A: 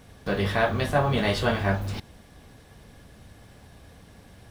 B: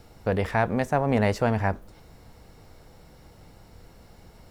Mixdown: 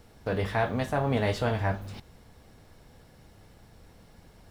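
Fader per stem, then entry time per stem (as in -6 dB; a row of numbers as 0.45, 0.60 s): -9.0, -5.5 dB; 0.00, 0.00 s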